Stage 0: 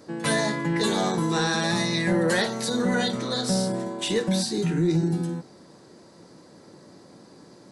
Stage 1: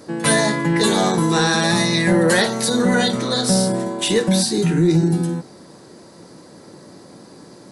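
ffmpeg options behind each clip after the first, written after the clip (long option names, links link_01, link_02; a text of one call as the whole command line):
ffmpeg -i in.wav -af "equalizer=frequency=10000:width=2.6:gain=6.5,volume=7dB" out.wav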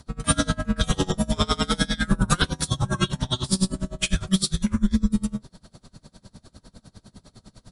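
ffmpeg -i in.wav -af "afreqshift=-380,aeval=exprs='val(0)*pow(10,-27*(0.5-0.5*cos(2*PI*9.9*n/s))/20)':channel_layout=same" out.wav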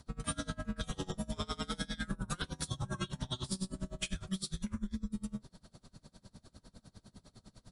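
ffmpeg -i in.wav -af "acompressor=threshold=-25dB:ratio=6,volume=-8.5dB" out.wav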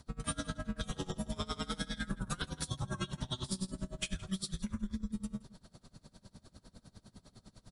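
ffmpeg -i in.wav -filter_complex "[0:a]asplit=2[link_01][link_02];[link_02]adelay=169.1,volume=-19dB,highshelf=frequency=4000:gain=-3.8[link_03];[link_01][link_03]amix=inputs=2:normalize=0" out.wav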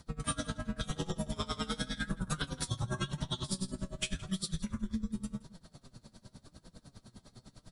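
ffmpeg -i in.wav -af "flanger=delay=5.7:depth=3.4:regen=64:speed=0.9:shape=triangular,volume=6.5dB" out.wav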